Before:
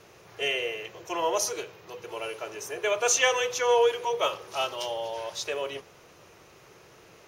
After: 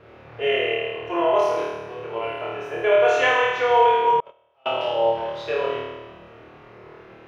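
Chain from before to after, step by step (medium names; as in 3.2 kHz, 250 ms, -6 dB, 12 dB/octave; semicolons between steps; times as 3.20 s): distance through air 480 m; flutter echo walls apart 4.5 m, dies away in 1.2 s; 4.20–4.66 s: gate -17 dBFS, range -37 dB; trim +5 dB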